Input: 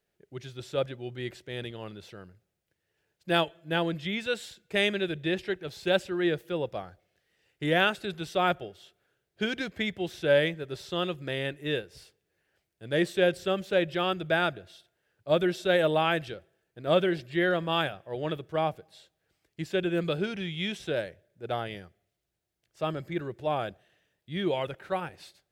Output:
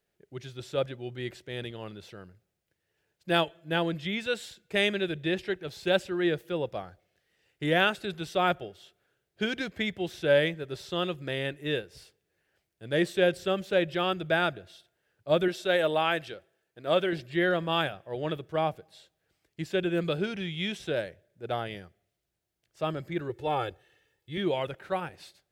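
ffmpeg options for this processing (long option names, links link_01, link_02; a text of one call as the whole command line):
ffmpeg -i in.wav -filter_complex "[0:a]asettb=1/sr,asplit=3[link_01][link_02][link_03];[link_01]atrim=end=15.484[link_04];[link_02]atrim=start=15.48:end=17.13,asetpts=PTS-STARTPTS,afade=type=in:duration=0.004:curve=qsin,afade=type=out:start_time=1.646:duration=0.004:curve=qsin,lowshelf=frequency=230:gain=-9.5[link_05];[link_03]atrim=start=17.126[link_06];[link_04][link_05]acrossfade=duration=0.004:curve1=hsin:curve2=qsin[link_07];[link_07][link_06]acrossfade=duration=0.004:curve1=qsin:curve2=hsin,asettb=1/sr,asplit=3[link_08][link_09][link_10];[link_08]atrim=end=23.294[link_11];[link_09]atrim=start=23.29:end=24.38,asetpts=PTS-STARTPTS,afade=type=in:duration=0.004:curve=qsin,afade=type=out:start_time=1.086:duration=0.004:curve=qsin,aecho=1:1:2.3:0.81,atrim=end_sample=48069[link_12];[link_10]atrim=start=24.376[link_13];[link_11][link_12]acrossfade=duration=0.004:curve1=hsin:curve2=qsin[link_14];[link_14][link_13]acrossfade=duration=0.004:curve1=qsin:curve2=hsin" out.wav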